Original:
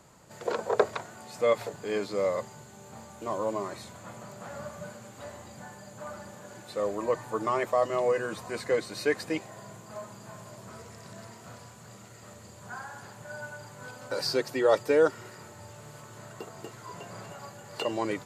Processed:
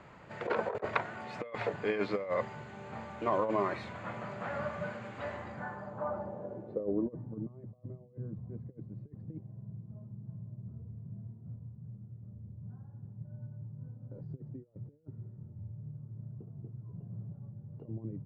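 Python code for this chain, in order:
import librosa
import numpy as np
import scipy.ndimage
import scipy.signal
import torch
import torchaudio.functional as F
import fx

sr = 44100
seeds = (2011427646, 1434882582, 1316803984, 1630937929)

y = fx.over_compress(x, sr, threshold_db=-31.0, ratio=-0.5)
y = fx.filter_sweep_lowpass(y, sr, from_hz=2300.0, to_hz=140.0, start_s=5.33, end_s=7.6, q=1.6)
y = y * librosa.db_to_amplitude(-1.0)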